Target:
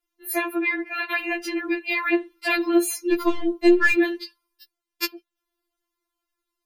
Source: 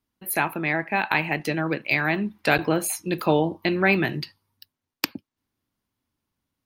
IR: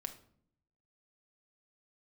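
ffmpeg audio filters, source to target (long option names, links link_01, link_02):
-filter_complex "[0:a]asplit=3[link_01][link_02][link_03];[link_01]afade=type=out:start_time=3.11:duration=0.02[link_04];[link_02]aeval=exprs='0.501*(cos(1*acos(clip(val(0)/0.501,-1,1)))-cos(1*PI/2))+0.0251*(cos(8*acos(clip(val(0)/0.501,-1,1)))-cos(8*PI/2))':channel_layout=same,afade=type=in:start_time=3.11:duration=0.02,afade=type=out:start_time=3.92:duration=0.02[link_05];[link_03]afade=type=in:start_time=3.92:duration=0.02[link_06];[link_04][link_05][link_06]amix=inputs=3:normalize=0,afftfilt=real='re*4*eq(mod(b,16),0)':imag='im*4*eq(mod(b,16),0)':win_size=2048:overlap=0.75,volume=2.5dB"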